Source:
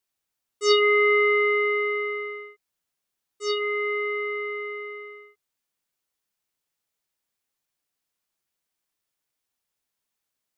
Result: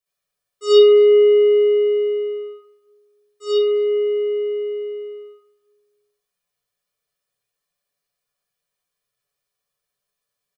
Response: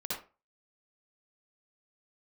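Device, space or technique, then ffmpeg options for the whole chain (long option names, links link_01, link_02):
microphone above a desk: -filter_complex "[0:a]aecho=1:1:1.7:0.58,aecho=1:1:7:0.59,asplit=2[link_01][link_02];[link_02]adelay=268,lowpass=frequency=860:poles=1,volume=-15dB,asplit=2[link_03][link_04];[link_04]adelay=268,lowpass=frequency=860:poles=1,volume=0.38,asplit=2[link_05][link_06];[link_06]adelay=268,lowpass=frequency=860:poles=1,volume=0.38[link_07];[link_01][link_03][link_05][link_07]amix=inputs=4:normalize=0[link_08];[1:a]atrim=start_sample=2205[link_09];[link_08][link_09]afir=irnorm=-1:irlink=0,volume=-2dB"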